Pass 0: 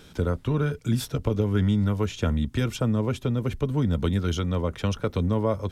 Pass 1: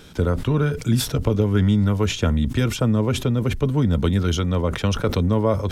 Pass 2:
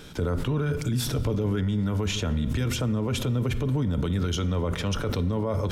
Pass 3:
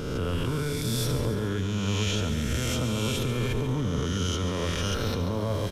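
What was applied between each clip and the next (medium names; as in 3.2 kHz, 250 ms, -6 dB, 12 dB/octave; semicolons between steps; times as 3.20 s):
decay stretcher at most 100 dB/s; trim +4.5 dB
reverberation RT60 1.3 s, pre-delay 7 ms, DRR 12.5 dB; peak limiter -18.5 dBFS, peak gain reduction 11 dB
reverse spectral sustain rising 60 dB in 1.86 s; feedback delay 140 ms, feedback 57%, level -10 dB; resampled via 32 kHz; trim -5 dB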